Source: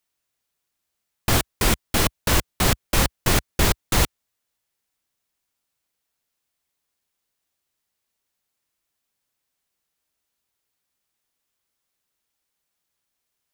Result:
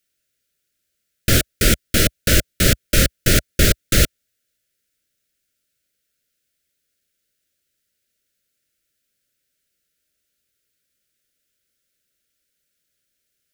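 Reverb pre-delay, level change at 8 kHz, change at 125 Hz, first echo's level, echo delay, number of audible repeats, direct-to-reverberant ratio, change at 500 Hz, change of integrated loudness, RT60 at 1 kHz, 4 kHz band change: none, +5.0 dB, +5.0 dB, none, none, none, none, +3.5 dB, +4.5 dB, none, +4.5 dB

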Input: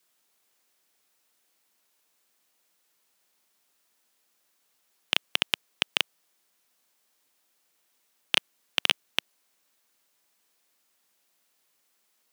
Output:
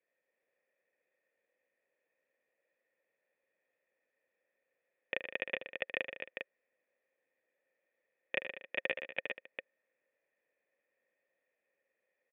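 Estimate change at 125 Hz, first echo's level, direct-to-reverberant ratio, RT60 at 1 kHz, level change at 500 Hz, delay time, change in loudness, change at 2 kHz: -11.5 dB, -11.5 dB, none, none, +2.0 dB, 76 ms, -12.0 dB, -6.0 dB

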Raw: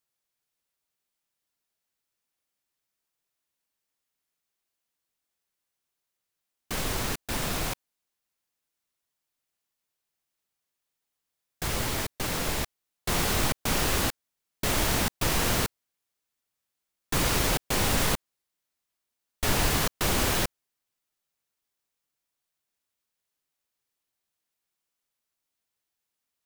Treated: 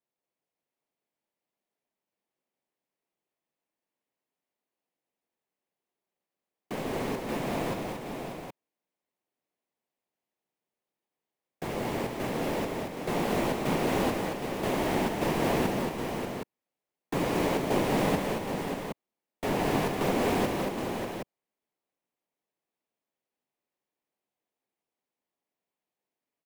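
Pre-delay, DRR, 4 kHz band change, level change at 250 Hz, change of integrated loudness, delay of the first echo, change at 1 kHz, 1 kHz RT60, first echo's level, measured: none, none, -8.5 dB, +4.5 dB, -3.0 dB, 0.158 s, +1.5 dB, none, -9.5 dB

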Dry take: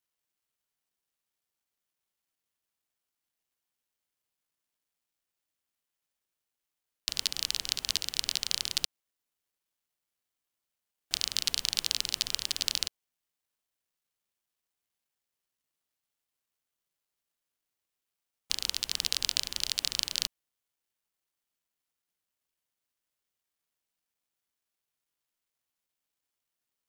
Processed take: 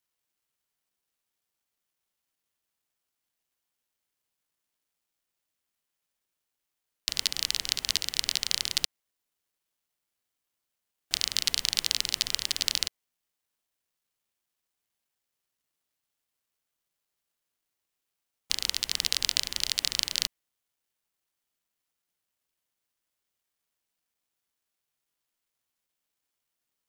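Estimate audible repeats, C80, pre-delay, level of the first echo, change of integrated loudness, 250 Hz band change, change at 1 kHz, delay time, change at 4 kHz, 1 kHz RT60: none, none, none, none, +2.5 dB, +2.5 dB, +2.5 dB, none, +2.5 dB, none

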